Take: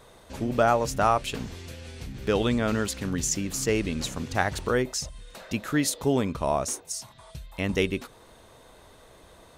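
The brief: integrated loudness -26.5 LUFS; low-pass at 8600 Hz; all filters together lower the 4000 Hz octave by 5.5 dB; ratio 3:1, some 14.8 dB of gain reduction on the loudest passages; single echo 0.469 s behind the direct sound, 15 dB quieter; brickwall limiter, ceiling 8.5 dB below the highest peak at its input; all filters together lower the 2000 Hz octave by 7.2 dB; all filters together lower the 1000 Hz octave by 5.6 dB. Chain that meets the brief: LPF 8600 Hz; bell 1000 Hz -6.5 dB; bell 2000 Hz -6 dB; bell 4000 Hz -5 dB; compressor 3:1, threshold -41 dBFS; limiter -33 dBFS; echo 0.469 s -15 dB; gain +17.5 dB

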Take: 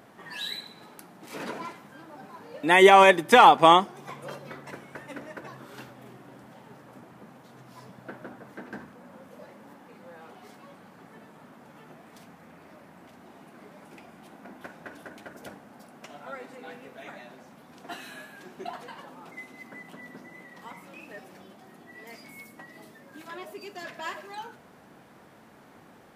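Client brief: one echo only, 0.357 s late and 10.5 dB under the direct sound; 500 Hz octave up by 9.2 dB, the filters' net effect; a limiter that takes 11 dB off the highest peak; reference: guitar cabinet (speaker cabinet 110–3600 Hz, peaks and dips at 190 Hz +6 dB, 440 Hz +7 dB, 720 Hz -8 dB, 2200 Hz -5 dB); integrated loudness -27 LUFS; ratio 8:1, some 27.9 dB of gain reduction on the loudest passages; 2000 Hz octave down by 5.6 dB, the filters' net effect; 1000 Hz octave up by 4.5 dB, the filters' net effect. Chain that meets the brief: bell 500 Hz +8 dB; bell 1000 Hz +8 dB; bell 2000 Hz -8 dB; compressor 8:1, threshold -34 dBFS; limiter -32 dBFS; speaker cabinet 110–3600 Hz, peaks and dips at 190 Hz +6 dB, 440 Hz +7 dB, 720 Hz -8 dB, 2200 Hz -5 dB; echo 0.357 s -10.5 dB; gain +15.5 dB

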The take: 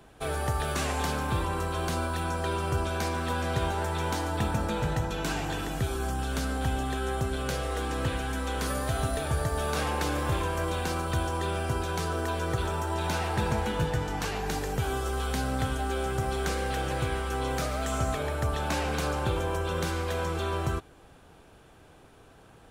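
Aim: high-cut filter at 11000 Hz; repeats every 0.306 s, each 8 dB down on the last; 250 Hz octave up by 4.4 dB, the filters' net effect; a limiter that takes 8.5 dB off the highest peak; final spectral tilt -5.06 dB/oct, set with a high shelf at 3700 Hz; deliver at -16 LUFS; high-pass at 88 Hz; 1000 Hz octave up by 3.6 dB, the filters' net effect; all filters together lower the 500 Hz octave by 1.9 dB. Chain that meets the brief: HPF 88 Hz; LPF 11000 Hz; bell 250 Hz +7.5 dB; bell 500 Hz -6.5 dB; bell 1000 Hz +6.5 dB; high shelf 3700 Hz -7 dB; limiter -22 dBFS; feedback echo 0.306 s, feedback 40%, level -8 dB; gain +14.5 dB

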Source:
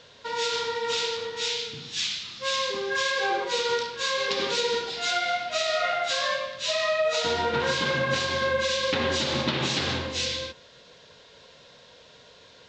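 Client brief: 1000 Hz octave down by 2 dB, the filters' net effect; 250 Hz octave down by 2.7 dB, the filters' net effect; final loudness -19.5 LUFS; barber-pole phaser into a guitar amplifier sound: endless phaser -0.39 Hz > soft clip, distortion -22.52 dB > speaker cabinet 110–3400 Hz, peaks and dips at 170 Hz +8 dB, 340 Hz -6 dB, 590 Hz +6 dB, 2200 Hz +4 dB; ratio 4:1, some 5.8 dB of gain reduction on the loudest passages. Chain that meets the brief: bell 250 Hz -4 dB; bell 1000 Hz -3.5 dB; compressor 4:1, threshold -30 dBFS; endless phaser -0.39 Hz; soft clip -26 dBFS; speaker cabinet 110–3400 Hz, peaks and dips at 170 Hz +8 dB, 340 Hz -6 dB, 590 Hz +6 dB, 2200 Hz +4 dB; gain +16.5 dB

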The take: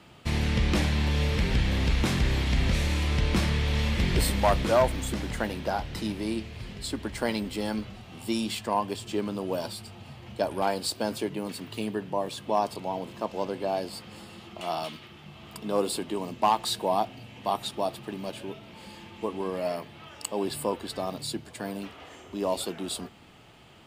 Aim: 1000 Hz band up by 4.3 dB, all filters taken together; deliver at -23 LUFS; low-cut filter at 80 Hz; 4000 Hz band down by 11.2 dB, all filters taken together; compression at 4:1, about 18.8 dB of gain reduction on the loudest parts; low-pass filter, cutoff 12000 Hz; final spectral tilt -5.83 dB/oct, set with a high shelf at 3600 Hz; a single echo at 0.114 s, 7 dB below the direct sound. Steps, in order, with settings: HPF 80 Hz; LPF 12000 Hz; bell 1000 Hz +6.5 dB; high shelf 3600 Hz -9 dB; bell 4000 Hz -9 dB; compressor 4:1, threshold -38 dBFS; echo 0.114 s -7 dB; gain +18 dB

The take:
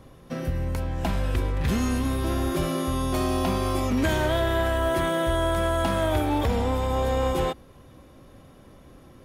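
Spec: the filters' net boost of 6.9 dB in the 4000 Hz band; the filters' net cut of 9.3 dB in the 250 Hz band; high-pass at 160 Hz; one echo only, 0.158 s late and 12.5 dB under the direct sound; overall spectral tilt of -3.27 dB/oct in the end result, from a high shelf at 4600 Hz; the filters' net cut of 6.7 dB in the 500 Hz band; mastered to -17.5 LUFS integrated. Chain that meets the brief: HPF 160 Hz; bell 250 Hz -8.5 dB; bell 500 Hz -7.5 dB; bell 4000 Hz +5.5 dB; high shelf 4600 Hz +7.5 dB; echo 0.158 s -12.5 dB; gain +11 dB

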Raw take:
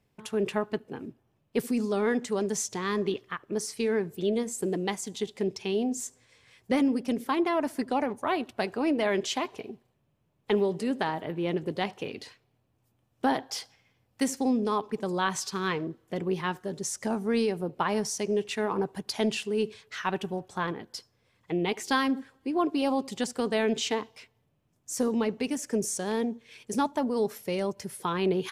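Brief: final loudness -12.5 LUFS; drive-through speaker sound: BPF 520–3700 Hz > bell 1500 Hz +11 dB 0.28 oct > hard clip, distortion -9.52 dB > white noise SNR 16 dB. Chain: BPF 520–3700 Hz; bell 1500 Hz +11 dB 0.28 oct; hard clip -25.5 dBFS; white noise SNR 16 dB; gain +22 dB

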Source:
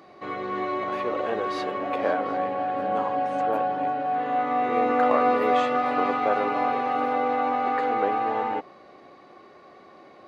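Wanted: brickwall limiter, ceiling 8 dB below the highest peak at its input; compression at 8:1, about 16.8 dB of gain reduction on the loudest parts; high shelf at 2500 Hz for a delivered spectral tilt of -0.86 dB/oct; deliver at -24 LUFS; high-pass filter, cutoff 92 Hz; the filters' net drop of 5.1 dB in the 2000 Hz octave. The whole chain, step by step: HPF 92 Hz; bell 2000 Hz -3 dB; high shelf 2500 Hz -9 dB; compressor 8:1, threshold -36 dBFS; gain +18.5 dB; limiter -15 dBFS

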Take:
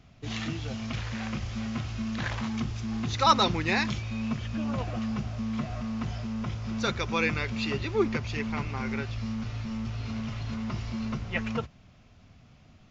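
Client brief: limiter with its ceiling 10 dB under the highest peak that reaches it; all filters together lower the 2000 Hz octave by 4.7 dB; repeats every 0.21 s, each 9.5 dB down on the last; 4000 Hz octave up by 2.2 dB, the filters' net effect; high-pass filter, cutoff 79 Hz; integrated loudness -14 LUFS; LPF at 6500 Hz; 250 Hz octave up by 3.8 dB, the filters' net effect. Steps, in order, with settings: HPF 79 Hz; LPF 6500 Hz; bell 250 Hz +4.5 dB; bell 2000 Hz -7.5 dB; bell 4000 Hz +5 dB; limiter -19.5 dBFS; feedback echo 0.21 s, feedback 33%, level -9.5 dB; gain +16.5 dB

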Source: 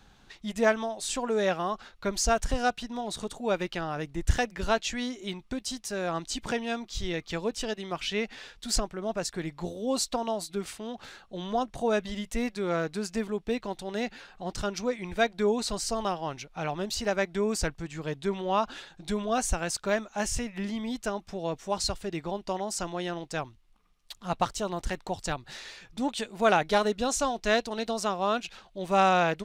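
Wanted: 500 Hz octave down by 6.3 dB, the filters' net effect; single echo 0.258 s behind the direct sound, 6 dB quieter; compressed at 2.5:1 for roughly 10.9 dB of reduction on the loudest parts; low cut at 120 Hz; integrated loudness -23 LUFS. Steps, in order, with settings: HPF 120 Hz; bell 500 Hz -8.5 dB; compressor 2.5:1, threshold -38 dBFS; echo 0.258 s -6 dB; gain +15.5 dB

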